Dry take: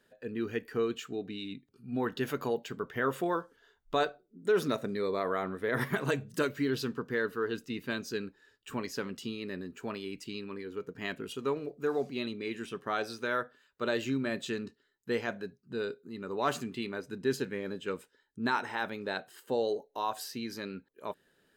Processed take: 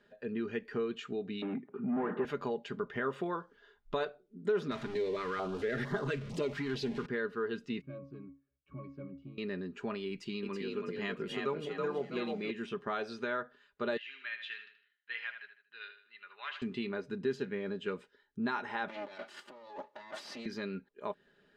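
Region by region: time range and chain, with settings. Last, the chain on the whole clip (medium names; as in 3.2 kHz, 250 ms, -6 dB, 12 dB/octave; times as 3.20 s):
1.42–2.25 s: overdrive pedal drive 33 dB, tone 1.1 kHz, clips at -19.5 dBFS + band-pass 160–2000 Hz + distance through air 410 m
4.71–7.06 s: jump at every zero crossing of -35.5 dBFS + band-stop 200 Hz, Q 5.2 + step-sequenced notch 4.4 Hz 520–2400 Hz
7.81–9.38 s: bass shelf 370 Hz +7 dB + waveshaping leveller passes 1 + pitch-class resonator C#, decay 0.29 s
10.10–12.51 s: treble shelf 12 kHz +11 dB + comb 5.8 ms, depth 31% + frequency-shifting echo 327 ms, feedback 35%, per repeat +41 Hz, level -3 dB
13.97–16.62 s: Butterworth band-pass 2.4 kHz, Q 1.3 + feedback delay 78 ms, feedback 39%, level -10 dB
18.88–20.46 s: comb filter that takes the minimum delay 3.4 ms + high-pass 270 Hz + compressor with a negative ratio -48 dBFS
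whole clip: compression 2:1, threshold -38 dBFS; low-pass 3.8 kHz 12 dB/octave; comb 4.9 ms, depth 44%; trim +1.5 dB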